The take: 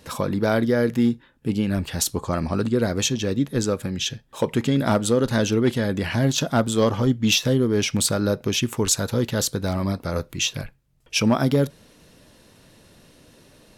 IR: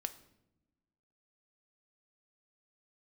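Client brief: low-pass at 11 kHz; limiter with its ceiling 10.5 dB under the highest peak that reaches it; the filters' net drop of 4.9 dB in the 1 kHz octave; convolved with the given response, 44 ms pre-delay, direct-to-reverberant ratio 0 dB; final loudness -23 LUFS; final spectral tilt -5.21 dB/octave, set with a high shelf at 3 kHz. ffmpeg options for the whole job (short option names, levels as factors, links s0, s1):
-filter_complex "[0:a]lowpass=11000,equalizer=f=1000:t=o:g=-6,highshelf=f=3000:g=-6.5,alimiter=limit=0.0891:level=0:latency=1,asplit=2[s0][s1];[1:a]atrim=start_sample=2205,adelay=44[s2];[s1][s2]afir=irnorm=-1:irlink=0,volume=1.12[s3];[s0][s3]amix=inputs=2:normalize=0,volume=1.58"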